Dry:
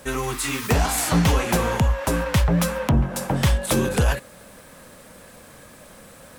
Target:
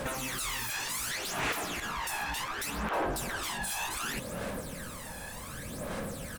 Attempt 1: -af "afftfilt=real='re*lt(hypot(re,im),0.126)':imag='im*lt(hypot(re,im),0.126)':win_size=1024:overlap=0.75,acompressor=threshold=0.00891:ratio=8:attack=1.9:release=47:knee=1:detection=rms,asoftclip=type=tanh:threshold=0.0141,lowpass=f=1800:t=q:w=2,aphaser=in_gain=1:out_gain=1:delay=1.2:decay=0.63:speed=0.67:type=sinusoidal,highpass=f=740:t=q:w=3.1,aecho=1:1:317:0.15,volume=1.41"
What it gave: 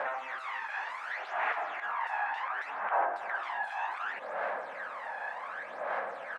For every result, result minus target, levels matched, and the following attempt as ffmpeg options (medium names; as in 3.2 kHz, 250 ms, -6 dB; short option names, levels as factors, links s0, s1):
compression: peak gain reduction +9.5 dB; 1 kHz band +5.0 dB; 2 kHz band +2.5 dB
-af "afftfilt=real='re*lt(hypot(re,im),0.126)':imag='im*lt(hypot(re,im),0.126)':win_size=1024:overlap=0.75,acompressor=threshold=0.0316:ratio=8:attack=1.9:release=47:knee=1:detection=rms,asoftclip=type=tanh:threshold=0.0141,lowpass=f=1800:t=q:w=2,aphaser=in_gain=1:out_gain=1:delay=1.2:decay=0.63:speed=0.67:type=sinusoidal,highpass=f=740:t=q:w=3.1,aecho=1:1:317:0.15,volume=1.41"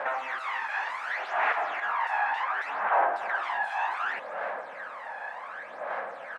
1 kHz band +5.0 dB; 2 kHz band +2.5 dB
-af "afftfilt=real='re*lt(hypot(re,im),0.126)':imag='im*lt(hypot(re,im),0.126)':win_size=1024:overlap=0.75,acompressor=threshold=0.0316:ratio=8:attack=1.9:release=47:knee=1:detection=rms,asoftclip=type=tanh:threshold=0.0141,lowpass=f=1800:t=q:w=2,aphaser=in_gain=1:out_gain=1:delay=1.2:decay=0.63:speed=0.67:type=sinusoidal,aecho=1:1:317:0.15,volume=1.41"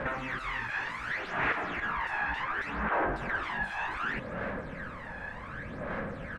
2 kHz band +4.0 dB
-af "afftfilt=real='re*lt(hypot(re,im),0.126)':imag='im*lt(hypot(re,im),0.126)':win_size=1024:overlap=0.75,acompressor=threshold=0.0316:ratio=8:attack=1.9:release=47:knee=1:detection=rms,asoftclip=type=tanh:threshold=0.0141,aphaser=in_gain=1:out_gain=1:delay=1.2:decay=0.63:speed=0.67:type=sinusoidal,aecho=1:1:317:0.15,volume=1.41"